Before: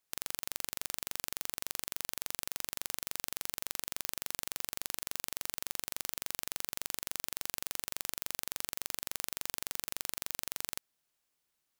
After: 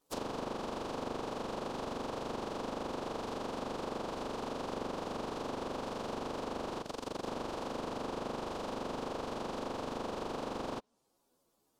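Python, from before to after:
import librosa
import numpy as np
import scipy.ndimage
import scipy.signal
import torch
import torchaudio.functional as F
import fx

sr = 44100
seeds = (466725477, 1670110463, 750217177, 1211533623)

y = fx.partial_stretch(x, sr, pct=121)
y = fx.graphic_eq(y, sr, hz=(250, 500, 1000, 2000), db=(10, 9, 7, -11))
y = fx.level_steps(y, sr, step_db=12, at=(6.81, 7.26))
y = fx.env_lowpass_down(y, sr, base_hz=2600.0, full_db=-44.0)
y = y * librosa.db_to_amplitude(12.5)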